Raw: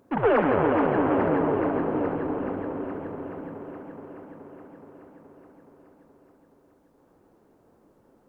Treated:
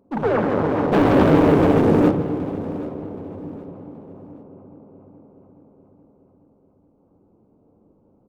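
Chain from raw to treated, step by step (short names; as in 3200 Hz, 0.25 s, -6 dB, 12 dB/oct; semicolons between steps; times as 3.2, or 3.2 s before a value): Wiener smoothing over 25 samples; 0.92–2.11 sample leveller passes 3; feedback echo 0.773 s, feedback 31%, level -18 dB; on a send at -9.5 dB: reverb RT60 1.2 s, pre-delay 3 ms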